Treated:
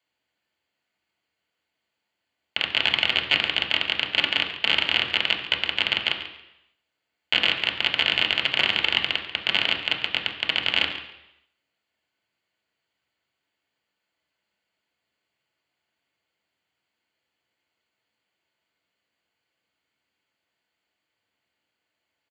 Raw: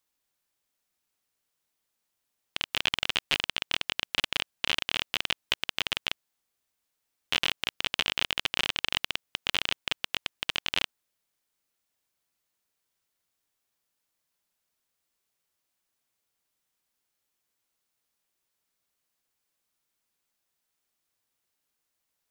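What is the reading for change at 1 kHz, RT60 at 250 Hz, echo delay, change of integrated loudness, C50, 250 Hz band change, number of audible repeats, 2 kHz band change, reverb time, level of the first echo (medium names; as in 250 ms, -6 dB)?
+5.0 dB, 0.80 s, 140 ms, +7.5 dB, 8.0 dB, +6.5 dB, 1, +8.0 dB, 0.85 s, -14.0 dB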